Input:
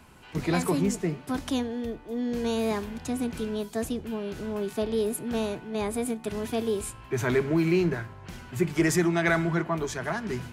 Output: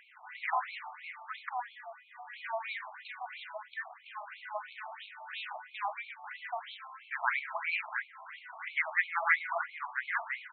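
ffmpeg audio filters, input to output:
-filter_complex "[0:a]aemphasis=mode=reproduction:type=riaa,afftfilt=real='re*lt(hypot(re,im),0.251)':imag='im*lt(hypot(re,im),0.251)':win_size=1024:overlap=0.75,equalizer=f=2000:t=o:w=0.37:g=6.5,areverse,acompressor=mode=upward:threshold=0.00708:ratio=2.5,areverse,aexciter=amount=15.8:drive=5.2:freq=12000,asplit=2[s0][s1];[s1]adelay=44,volume=0.251[s2];[s0][s2]amix=inputs=2:normalize=0,afftfilt=real='re*between(b*sr/1024,890*pow(3100/890,0.5+0.5*sin(2*PI*3*pts/sr))/1.41,890*pow(3100/890,0.5+0.5*sin(2*PI*3*pts/sr))*1.41)':imag='im*between(b*sr/1024,890*pow(3100/890,0.5+0.5*sin(2*PI*3*pts/sr))/1.41,890*pow(3100/890,0.5+0.5*sin(2*PI*3*pts/sr))*1.41)':win_size=1024:overlap=0.75,volume=1.78"

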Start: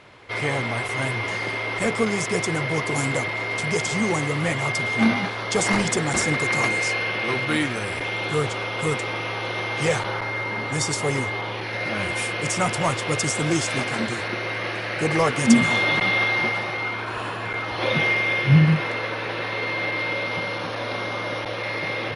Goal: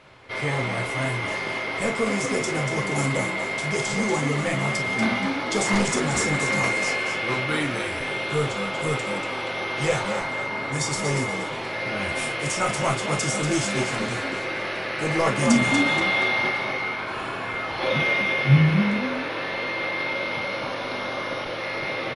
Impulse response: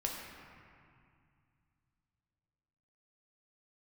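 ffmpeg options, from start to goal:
-filter_complex "[0:a]asplit=5[s0][s1][s2][s3][s4];[s1]adelay=238,afreqshift=49,volume=0.422[s5];[s2]adelay=476,afreqshift=98,volume=0.135[s6];[s3]adelay=714,afreqshift=147,volume=0.0432[s7];[s4]adelay=952,afreqshift=196,volume=0.0138[s8];[s0][s5][s6][s7][s8]amix=inputs=5:normalize=0[s9];[1:a]atrim=start_sample=2205,atrim=end_sample=3528,asetrate=57330,aresample=44100[s10];[s9][s10]afir=irnorm=-1:irlink=0"

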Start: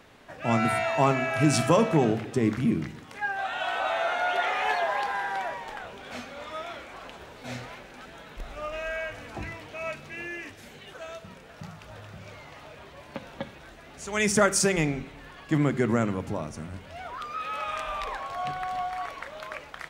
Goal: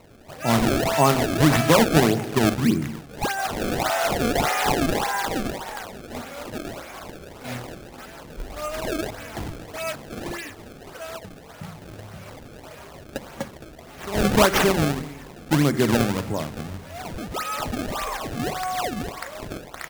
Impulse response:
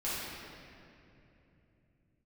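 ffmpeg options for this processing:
-af "aecho=1:1:217:0.15,acrusher=samples=26:mix=1:aa=0.000001:lfo=1:lforange=41.6:lforate=1.7,volume=1.68"

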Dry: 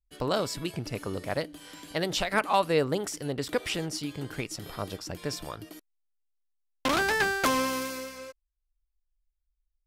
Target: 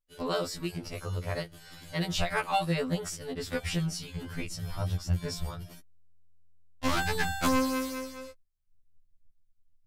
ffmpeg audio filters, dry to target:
-af "asubboost=boost=9:cutoff=120,afftfilt=real='re*2*eq(mod(b,4),0)':imag='im*2*eq(mod(b,4),0)':win_size=2048:overlap=0.75"

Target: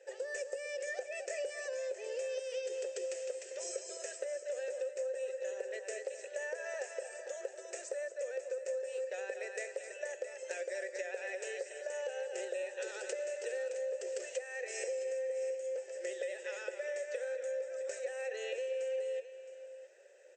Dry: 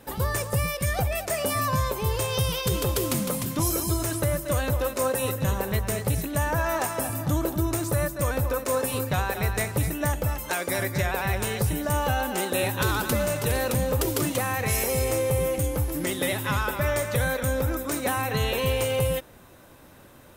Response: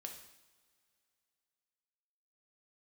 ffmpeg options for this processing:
-filter_complex "[0:a]asplit=3[s0][s1][s2];[s0]bandpass=f=530:t=q:w=8,volume=1[s3];[s1]bandpass=f=1840:t=q:w=8,volume=0.501[s4];[s2]bandpass=f=2480:t=q:w=8,volume=0.355[s5];[s3][s4][s5]amix=inputs=3:normalize=0,acompressor=threshold=0.0141:ratio=6,afftfilt=real='re*between(b*sr/4096,350,8300)':imag='im*between(b*sr/4096,350,8300)':win_size=4096:overlap=0.75,aexciter=amount=9.5:drive=6.3:freq=5500,asplit=2[s6][s7];[s7]aecho=0:1:666:0.224[s8];[s6][s8]amix=inputs=2:normalize=0,volume=1.12"

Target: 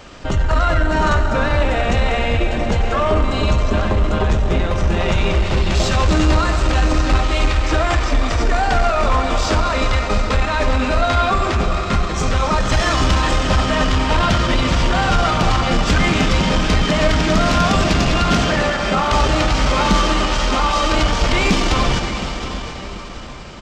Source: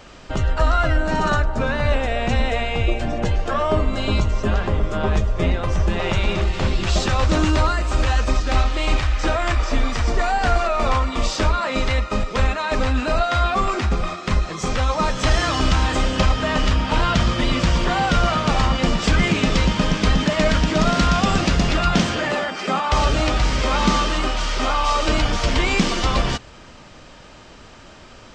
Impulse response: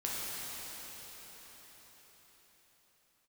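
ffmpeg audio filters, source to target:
-filter_complex "[0:a]asplit=2[s0][s1];[1:a]atrim=start_sample=2205[s2];[s1][s2]afir=irnorm=-1:irlink=0,volume=0.473[s3];[s0][s3]amix=inputs=2:normalize=0,asoftclip=type=tanh:threshold=0.376,aecho=1:1:870|1740|2610:0.2|0.0638|0.0204,atempo=1.2,volume=1.12"

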